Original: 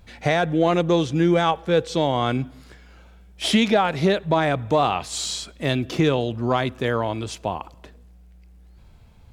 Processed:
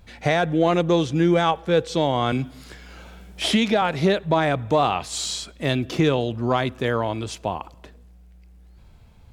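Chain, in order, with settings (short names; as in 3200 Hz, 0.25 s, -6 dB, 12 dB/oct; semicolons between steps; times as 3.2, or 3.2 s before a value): 2.32–3.82 three-band squash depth 40%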